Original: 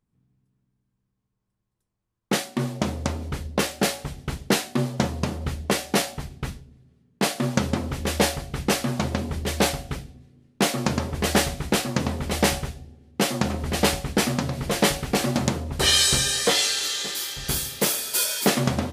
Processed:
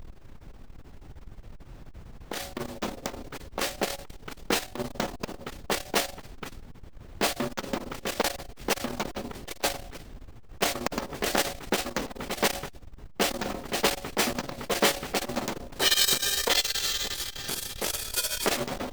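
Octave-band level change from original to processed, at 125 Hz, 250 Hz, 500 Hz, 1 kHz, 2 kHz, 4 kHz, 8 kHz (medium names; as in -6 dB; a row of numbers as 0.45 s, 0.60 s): -15.0 dB, -9.5 dB, -4.5 dB, -3.5 dB, -3.5 dB, -3.5 dB, -5.0 dB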